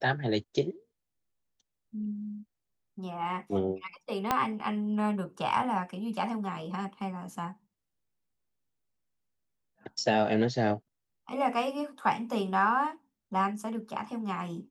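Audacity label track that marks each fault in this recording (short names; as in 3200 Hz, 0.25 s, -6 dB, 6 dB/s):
4.310000	4.310000	pop -11 dBFS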